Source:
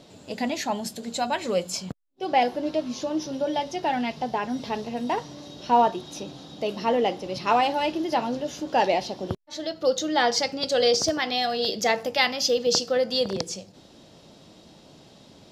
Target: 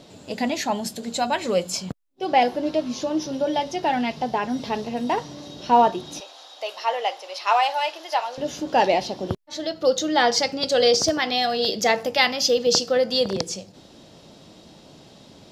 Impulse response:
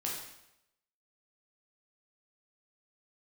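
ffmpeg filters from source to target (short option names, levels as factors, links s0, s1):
-filter_complex "[0:a]asettb=1/sr,asplit=3[s0][s1][s2];[s0]atrim=end=6.204[s3];[s1]atrim=start=6.2:end=8.38,asetpts=PTS-STARTPTS,afade=t=in:d=0.004:c=qsin,afade=t=out:st=2.176:d=0.004:c=qsin,highpass=f=640:w=0.5412,highpass=f=640:w=1.3066[s4];[s2]atrim=start=8.376[s5];[s3][s4]acrossfade=d=0.004:c1=hsin:c2=qsin[s6];[s6][s5]acrossfade=d=0.004:c1=qsin:c2=hsin,volume=1.41"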